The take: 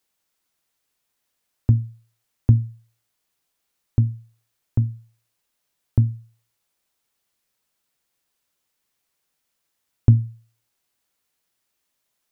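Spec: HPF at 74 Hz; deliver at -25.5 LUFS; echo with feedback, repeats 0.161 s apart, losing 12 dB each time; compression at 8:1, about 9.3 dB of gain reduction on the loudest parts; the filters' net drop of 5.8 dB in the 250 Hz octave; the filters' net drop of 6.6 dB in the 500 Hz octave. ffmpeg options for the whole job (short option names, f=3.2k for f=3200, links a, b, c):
-af "highpass=74,equalizer=f=250:t=o:g=-7,equalizer=f=500:t=o:g=-6,acompressor=threshold=-21dB:ratio=8,aecho=1:1:161|322|483:0.251|0.0628|0.0157,volume=7dB"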